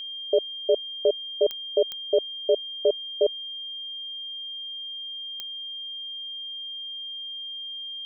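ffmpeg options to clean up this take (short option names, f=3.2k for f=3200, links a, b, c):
-af "adeclick=t=4,bandreject=f=3.2k:w=30"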